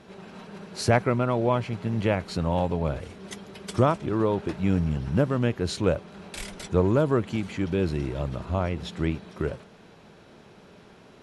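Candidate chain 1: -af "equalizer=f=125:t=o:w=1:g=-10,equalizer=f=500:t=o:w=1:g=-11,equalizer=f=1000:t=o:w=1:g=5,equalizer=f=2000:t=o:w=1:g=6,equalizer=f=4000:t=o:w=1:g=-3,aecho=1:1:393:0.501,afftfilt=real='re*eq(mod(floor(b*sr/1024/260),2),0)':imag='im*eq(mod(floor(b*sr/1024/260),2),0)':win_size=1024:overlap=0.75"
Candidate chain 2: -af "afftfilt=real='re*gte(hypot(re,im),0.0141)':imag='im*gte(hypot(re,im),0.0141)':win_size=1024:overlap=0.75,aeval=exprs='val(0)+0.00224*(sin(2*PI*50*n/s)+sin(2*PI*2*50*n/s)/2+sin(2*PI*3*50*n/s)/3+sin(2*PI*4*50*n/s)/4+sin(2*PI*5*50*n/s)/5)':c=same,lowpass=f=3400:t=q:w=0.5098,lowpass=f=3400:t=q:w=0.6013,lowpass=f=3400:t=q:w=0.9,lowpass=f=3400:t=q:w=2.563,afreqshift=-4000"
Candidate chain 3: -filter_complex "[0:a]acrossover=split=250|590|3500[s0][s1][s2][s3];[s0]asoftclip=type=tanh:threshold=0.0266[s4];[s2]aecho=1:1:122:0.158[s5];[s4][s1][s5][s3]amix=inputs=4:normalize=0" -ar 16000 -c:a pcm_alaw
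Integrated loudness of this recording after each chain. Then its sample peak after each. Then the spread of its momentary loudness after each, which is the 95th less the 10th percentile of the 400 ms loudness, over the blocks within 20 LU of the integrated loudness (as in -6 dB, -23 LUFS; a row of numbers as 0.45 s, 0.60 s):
-32.0 LUFS, -22.5 LUFS, -28.5 LUFS; -10.5 dBFS, -7.0 dBFS, -8.5 dBFS; 13 LU, 19 LU, 15 LU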